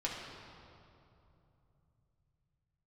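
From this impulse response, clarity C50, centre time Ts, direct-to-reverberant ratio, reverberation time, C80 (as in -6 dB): 1.0 dB, 0.101 s, -4.5 dB, 2.9 s, 2.5 dB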